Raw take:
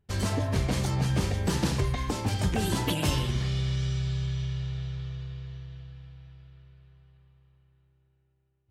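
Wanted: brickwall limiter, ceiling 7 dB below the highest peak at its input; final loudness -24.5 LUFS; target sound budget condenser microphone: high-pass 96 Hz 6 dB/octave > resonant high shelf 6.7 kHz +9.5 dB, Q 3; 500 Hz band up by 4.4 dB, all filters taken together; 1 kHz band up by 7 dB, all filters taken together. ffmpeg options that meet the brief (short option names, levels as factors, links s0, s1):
-af "equalizer=f=500:t=o:g=4,equalizer=f=1000:t=o:g=7.5,alimiter=limit=0.112:level=0:latency=1,highpass=f=96:p=1,highshelf=f=6700:t=q:w=3:g=9.5,volume=1.78"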